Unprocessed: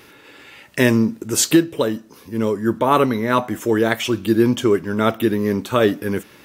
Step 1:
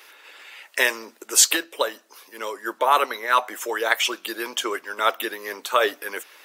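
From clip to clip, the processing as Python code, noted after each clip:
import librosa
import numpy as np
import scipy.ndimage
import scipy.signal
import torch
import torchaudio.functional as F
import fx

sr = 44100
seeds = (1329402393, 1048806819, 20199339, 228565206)

y = scipy.signal.sosfilt(scipy.signal.bessel(4, 730.0, 'highpass', norm='mag', fs=sr, output='sos'), x)
y = fx.hpss(y, sr, part='percussive', gain_db=8)
y = y * librosa.db_to_amplitude(-4.5)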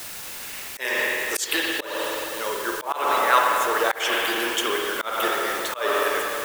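y = fx.rev_spring(x, sr, rt60_s=3.0, pass_ms=(46, 51), chirp_ms=75, drr_db=-1.0)
y = fx.quant_dither(y, sr, seeds[0], bits=6, dither='triangular')
y = fx.auto_swell(y, sr, attack_ms=226.0)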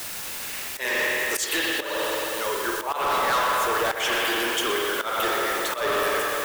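y = 10.0 ** (-22.0 / 20.0) * np.tanh(x / 10.0 ** (-22.0 / 20.0))
y = y + 10.0 ** (-13.0 / 20.0) * np.pad(y, (int(122 * sr / 1000.0), 0))[:len(y)]
y = y * librosa.db_to_amplitude(2.5)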